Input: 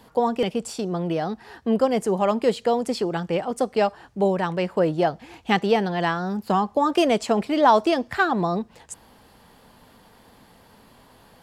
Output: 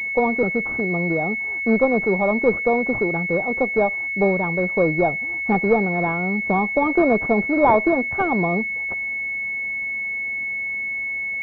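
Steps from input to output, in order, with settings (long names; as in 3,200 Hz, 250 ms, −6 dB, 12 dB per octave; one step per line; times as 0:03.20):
harmonic generator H 4 −22 dB, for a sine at −4.5 dBFS
switching amplifier with a slow clock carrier 2,200 Hz
level +2.5 dB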